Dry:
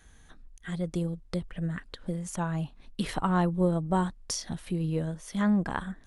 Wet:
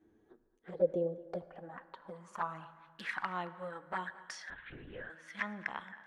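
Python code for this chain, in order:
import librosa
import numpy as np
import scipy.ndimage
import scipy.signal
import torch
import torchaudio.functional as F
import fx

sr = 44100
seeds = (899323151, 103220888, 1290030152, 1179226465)

p1 = fx.filter_sweep_bandpass(x, sr, from_hz=330.0, to_hz=1700.0, start_s=0.03, end_s=3.07, q=5.8)
p2 = fx.env_flanger(p1, sr, rest_ms=10.2, full_db=-41.0)
p3 = p2 + fx.echo_single(p2, sr, ms=222, db=-19.5, dry=0)
p4 = fx.rev_fdn(p3, sr, rt60_s=2.1, lf_ratio=0.95, hf_ratio=0.55, size_ms=63.0, drr_db=13.5)
p5 = fx.lpc_vocoder(p4, sr, seeds[0], excitation='whisper', order=10, at=(4.5, 5.1))
y = p5 * 10.0 ** (12.5 / 20.0)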